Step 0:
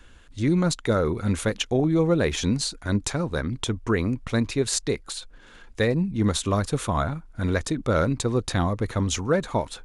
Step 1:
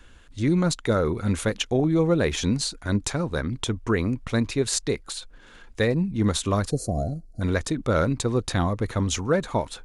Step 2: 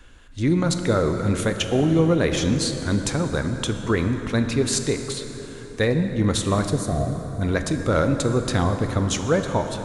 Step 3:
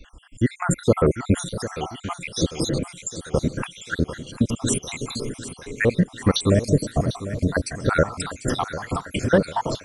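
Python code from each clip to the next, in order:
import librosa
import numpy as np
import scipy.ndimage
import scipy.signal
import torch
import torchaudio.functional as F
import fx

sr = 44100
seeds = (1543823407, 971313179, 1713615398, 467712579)

y1 = fx.spec_box(x, sr, start_s=6.71, length_s=0.7, low_hz=760.0, high_hz=4000.0, gain_db=-29)
y2 = fx.rev_plate(y1, sr, seeds[0], rt60_s=4.5, hf_ratio=0.55, predelay_ms=0, drr_db=6.0)
y2 = F.gain(torch.from_numpy(y2), 1.5).numpy()
y3 = fx.spec_dropout(y2, sr, seeds[1], share_pct=75)
y3 = fx.echo_feedback(y3, sr, ms=748, feedback_pct=51, wet_db=-13.5)
y3 = F.gain(torch.from_numpy(y3), 5.0).numpy()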